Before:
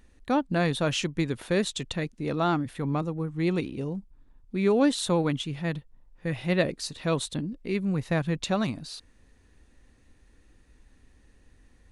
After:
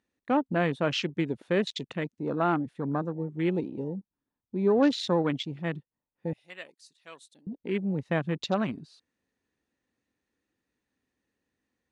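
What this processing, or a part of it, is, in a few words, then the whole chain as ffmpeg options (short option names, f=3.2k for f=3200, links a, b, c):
over-cleaned archive recording: -filter_complex "[0:a]highpass=170,lowpass=7.7k,afwtdn=0.0158,asettb=1/sr,asplit=3[a][b][c];[a]atrim=end=6.334[d];[b]atrim=start=6.33:end=7.47,asetpts=PTS-STARTPTS,afade=t=in:d=0.004:c=qsin,afade=t=out:st=1.136:d=0.004:c=qsin,aderivative[e];[c]atrim=start=7.466[f];[d][e]acrossfade=d=0.004:c1=hsin:c2=qsin[g];[g][f]acrossfade=d=0.004:c1=qsin:c2=hsin"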